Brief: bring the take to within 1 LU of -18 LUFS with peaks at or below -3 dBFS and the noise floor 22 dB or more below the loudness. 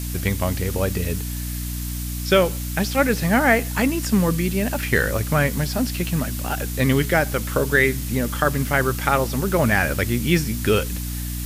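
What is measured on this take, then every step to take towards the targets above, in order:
hum 60 Hz; harmonics up to 300 Hz; hum level -26 dBFS; noise floor -28 dBFS; noise floor target -44 dBFS; loudness -21.5 LUFS; peak -4.0 dBFS; loudness target -18.0 LUFS
-> notches 60/120/180/240/300 Hz; noise print and reduce 16 dB; gain +3.5 dB; limiter -3 dBFS

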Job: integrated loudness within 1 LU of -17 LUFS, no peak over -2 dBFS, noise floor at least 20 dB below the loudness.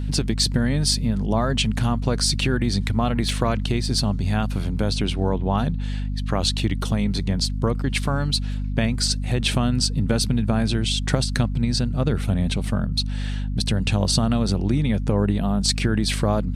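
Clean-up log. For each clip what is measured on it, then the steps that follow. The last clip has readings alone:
dropouts 1; longest dropout 1.1 ms; hum 50 Hz; harmonics up to 250 Hz; hum level -23 dBFS; loudness -22.5 LUFS; peak -5.5 dBFS; loudness target -17.0 LUFS
-> interpolate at 3.29, 1.1 ms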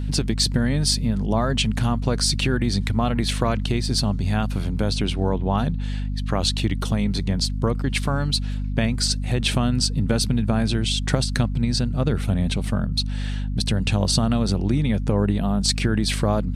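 dropouts 0; hum 50 Hz; harmonics up to 250 Hz; hum level -23 dBFS
-> notches 50/100/150/200/250 Hz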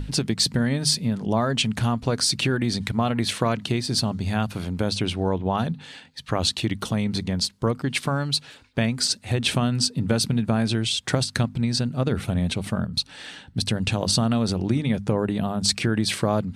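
hum none; loudness -24.0 LUFS; peak -6.5 dBFS; loudness target -17.0 LUFS
-> gain +7 dB; limiter -2 dBFS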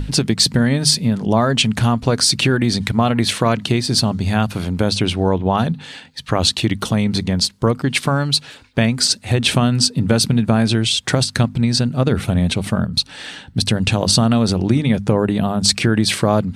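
loudness -17.0 LUFS; peak -2.0 dBFS; noise floor -41 dBFS

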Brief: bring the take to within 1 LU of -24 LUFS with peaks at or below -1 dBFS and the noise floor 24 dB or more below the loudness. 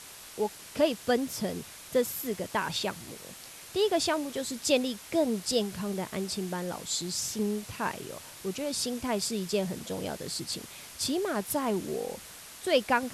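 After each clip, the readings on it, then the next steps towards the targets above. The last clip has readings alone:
noise floor -47 dBFS; noise floor target -55 dBFS; loudness -31.0 LUFS; peak -12.5 dBFS; loudness target -24.0 LUFS
-> noise print and reduce 8 dB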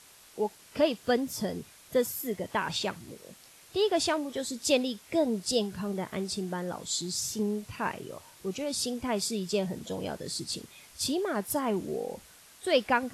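noise floor -55 dBFS; loudness -31.0 LUFS; peak -12.5 dBFS; loudness target -24.0 LUFS
-> gain +7 dB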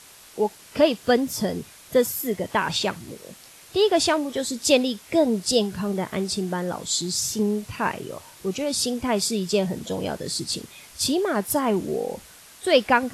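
loudness -24.0 LUFS; peak -5.5 dBFS; noise floor -48 dBFS

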